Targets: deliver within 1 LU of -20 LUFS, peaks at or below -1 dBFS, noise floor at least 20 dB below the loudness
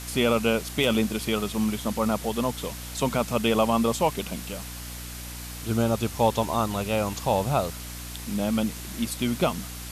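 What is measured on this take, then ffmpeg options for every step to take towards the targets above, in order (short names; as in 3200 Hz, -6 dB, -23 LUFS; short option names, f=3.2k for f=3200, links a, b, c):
hum 60 Hz; harmonics up to 300 Hz; hum level -38 dBFS; noise floor -38 dBFS; noise floor target -46 dBFS; loudness -26.0 LUFS; peak -7.5 dBFS; loudness target -20.0 LUFS
-> -af "bandreject=f=60:t=h:w=6,bandreject=f=120:t=h:w=6,bandreject=f=180:t=h:w=6,bandreject=f=240:t=h:w=6,bandreject=f=300:t=h:w=6"
-af "afftdn=nr=8:nf=-38"
-af "volume=6dB"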